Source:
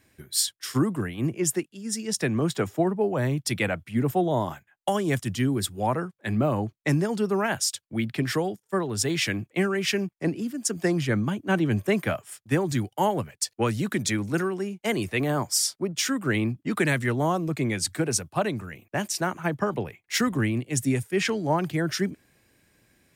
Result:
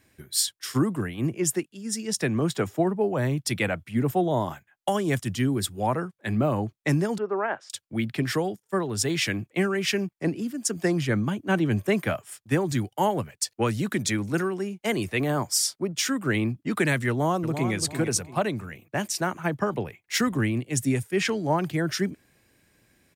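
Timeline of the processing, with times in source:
7.18–7.7 Butterworth band-pass 780 Hz, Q 0.58
17.09–17.74 echo throw 0.34 s, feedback 30%, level -8.5 dB

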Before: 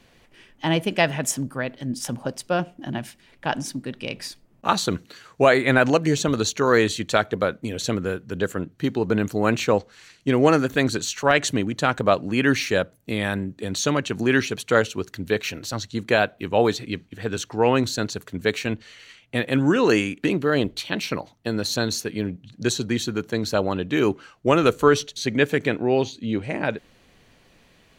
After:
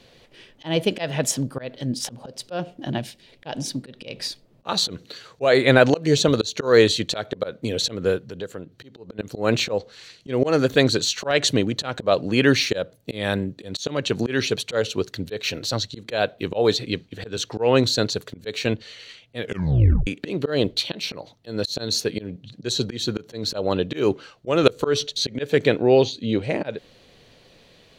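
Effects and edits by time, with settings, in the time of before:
2.98–3.71 bell 1300 Hz -5.5 dB 0.92 oct
8.18–9.19 compressor 2:1, threshold -42 dBFS
19.38 tape stop 0.69 s
whole clip: graphic EQ 125/500/4000 Hz +5/+9/+10 dB; auto swell 0.195 s; gain -1.5 dB

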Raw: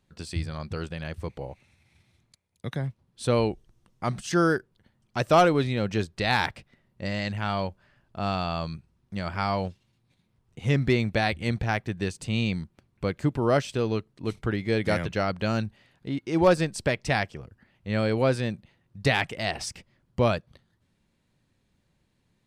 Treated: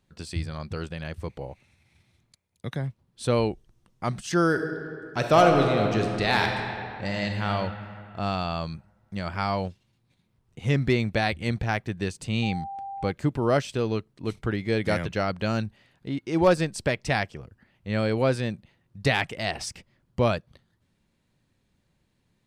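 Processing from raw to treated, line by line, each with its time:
4.48–7.48 reverb throw, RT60 2.6 s, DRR 2.5 dB
12.42–13.1 whine 790 Hz -33 dBFS

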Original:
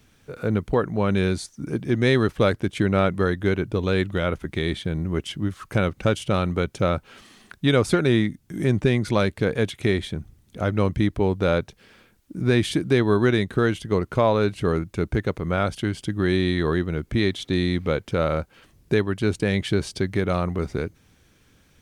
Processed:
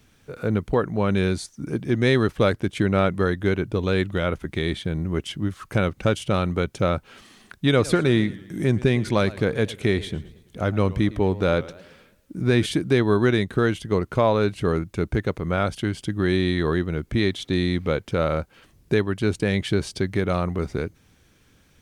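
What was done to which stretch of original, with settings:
7.66–12.66 warbling echo 0.111 s, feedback 47%, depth 161 cents, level -18.5 dB

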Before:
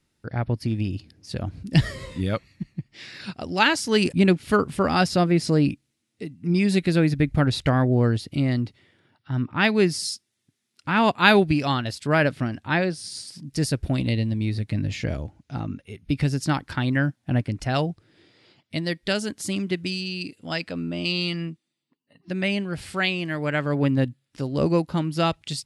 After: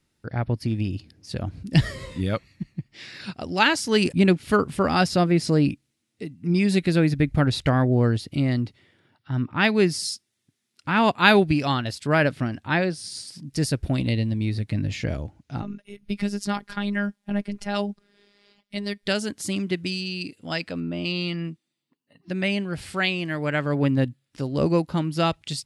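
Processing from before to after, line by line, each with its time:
15.62–19.06 robotiser 203 Hz
20.8–21.45 LPF 2900 Hz 6 dB/oct

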